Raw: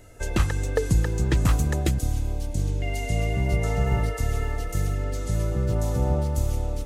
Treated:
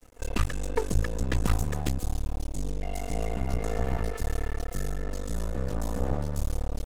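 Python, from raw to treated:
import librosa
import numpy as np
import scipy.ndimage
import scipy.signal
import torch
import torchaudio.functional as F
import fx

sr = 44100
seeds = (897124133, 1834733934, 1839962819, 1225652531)

y = x + 1.0 * np.pad(x, (int(4.1 * sr / 1000.0), 0))[:len(x)]
y = np.maximum(y, 0.0)
y = y * librosa.db_to_amplitude(-3.5)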